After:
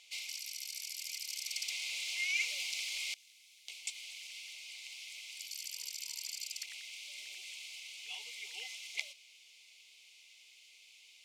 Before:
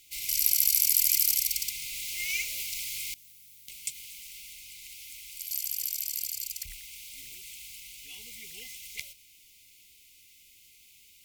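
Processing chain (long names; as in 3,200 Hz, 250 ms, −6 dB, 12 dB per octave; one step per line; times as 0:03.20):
four-pole ladder high-pass 620 Hz, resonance 50%
notch filter 2,000 Hz, Q 27
reversed playback
downward compressor 10 to 1, threshold −40 dBFS, peak gain reduction 13.5 dB
reversed playback
low-pass filter 5,300 Hz 12 dB per octave
level +12 dB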